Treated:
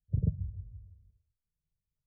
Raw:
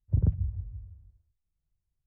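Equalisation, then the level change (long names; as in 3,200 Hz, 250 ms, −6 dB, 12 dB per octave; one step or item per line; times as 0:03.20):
Chebyshev low-pass with heavy ripple 640 Hz, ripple 9 dB
0.0 dB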